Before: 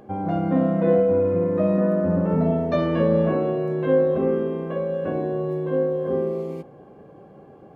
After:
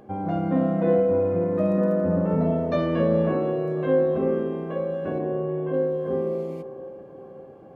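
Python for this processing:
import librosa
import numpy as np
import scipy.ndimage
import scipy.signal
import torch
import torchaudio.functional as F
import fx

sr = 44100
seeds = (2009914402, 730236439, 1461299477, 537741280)

y = fx.steep_lowpass(x, sr, hz=3300.0, slope=72, at=(5.18, 5.72), fade=0.02)
y = fx.echo_wet_bandpass(y, sr, ms=522, feedback_pct=54, hz=610.0, wet_db=-13.0)
y = fx.dmg_crackle(y, sr, seeds[0], per_s=26.0, level_db=-38.0, at=(1.56, 2.11), fade=0.02)
y = y * 10.0 ** (-2.0 / 20.0)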